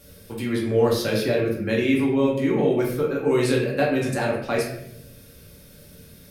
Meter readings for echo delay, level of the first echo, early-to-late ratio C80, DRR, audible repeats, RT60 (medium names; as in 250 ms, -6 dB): no echo, no echo, 7.5 dB, -3.5 dB, no echo, 0.75 s